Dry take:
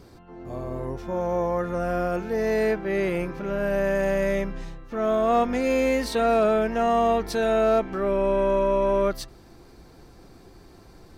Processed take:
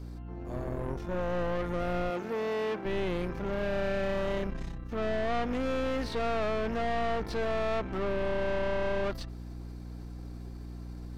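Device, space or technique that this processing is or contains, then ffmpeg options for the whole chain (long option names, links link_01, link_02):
valve amplifier with mains hum: -filter_complex "[0:a]aeval=exprs='(tanh(28.2*val(0)+0.7)-tanh(0.7))/28.2':channel_layout=same,aeval=exprs='val(0)+0.01*(sin(2*PI*60*n/s)+sin(2*PI*2*60*n/s)/2+sin(2*PI*3*60*n/s)/3+sin(2*PI*4*60*n/s)/4+sin(2*PI*5*60*n/s)/5)':channel_layout=same,asettb=1/sr,asplit=3[link_01][link_02][link_03];[link_01]atrim=end=2.104[link_04];[link_02]atrim=start=2.1:end=2.85,asetpts=PTS-STARTPTS,afade=type=in:duration=0.004:curve=qsin,afade=type=out:start_time=0.746:duration=0.004:curve=qsin,highpass=200[link_05];[link_03]atrim=start=2.846[link_06];[link_04][link_05]acrossfade=duration=0.004:curve1=hsin:curve2=qsin[link_07];[link_07][link_06]acrossfade=duration=0.004:curve1=qsin:curve2=hsin,acrossover=split=4600[link_08][link_09];[link_09]acompressor=threshold=-57dB:ratio=4:attack=1:release=60[link_10];[link_08][link_10]amix=inputs=2:normalize=0"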